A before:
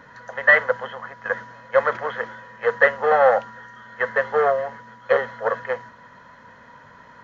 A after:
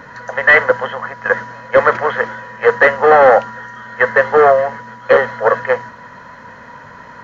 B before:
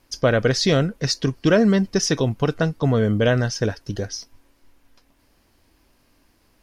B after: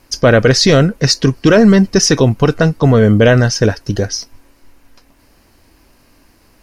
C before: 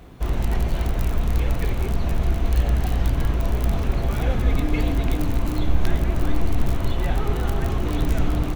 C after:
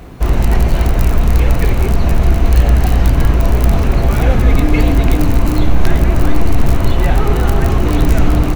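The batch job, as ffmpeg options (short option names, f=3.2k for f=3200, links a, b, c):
-af "equalizer=f=3.4k:w=6.3:g=-5.5,apsyclip=12.5dB,volume=-2dB"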